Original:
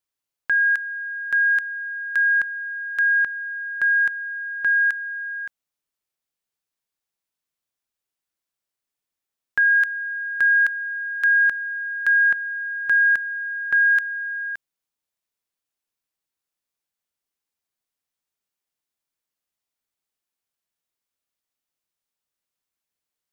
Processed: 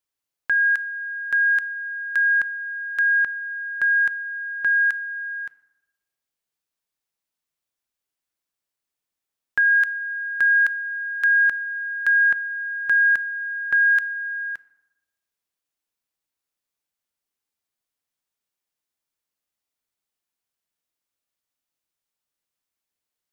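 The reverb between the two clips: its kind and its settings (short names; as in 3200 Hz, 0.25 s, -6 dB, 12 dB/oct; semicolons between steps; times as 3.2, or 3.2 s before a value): FDN reverb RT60 1 s, low-frequency decay 1×, high-frequency decay 0.6×, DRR 17.5 dB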